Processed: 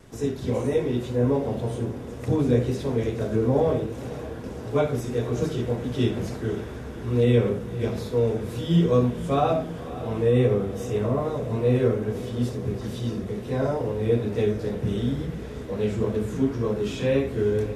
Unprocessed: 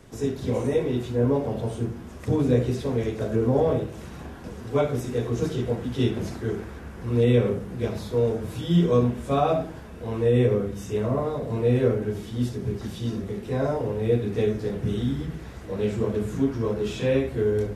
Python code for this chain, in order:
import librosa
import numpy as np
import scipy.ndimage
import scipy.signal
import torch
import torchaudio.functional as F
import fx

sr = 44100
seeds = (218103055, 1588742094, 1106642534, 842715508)

y = fx.wow_flutter(x, sr, seeds[0], rate_hz=2.1, depth_cents=31.0)
y = fx.echo_diffused(y, sr, ms=543, feedback_pct=71, wet_db=-15)